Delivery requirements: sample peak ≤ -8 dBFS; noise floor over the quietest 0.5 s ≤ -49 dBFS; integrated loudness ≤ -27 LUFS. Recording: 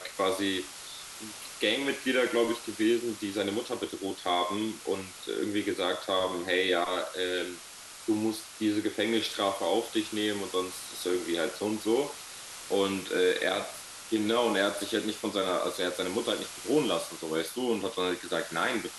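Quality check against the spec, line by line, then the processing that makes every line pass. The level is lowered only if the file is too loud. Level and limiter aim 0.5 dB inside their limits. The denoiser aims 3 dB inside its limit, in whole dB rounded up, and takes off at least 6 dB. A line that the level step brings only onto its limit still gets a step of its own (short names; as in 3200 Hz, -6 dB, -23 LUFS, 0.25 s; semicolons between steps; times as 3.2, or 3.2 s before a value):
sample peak -13.0 dBFS: OK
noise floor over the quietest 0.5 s -46 dBFS: fail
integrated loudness -30.0 LUFS: OK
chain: denoiser 6 dB, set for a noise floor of -46 dBFS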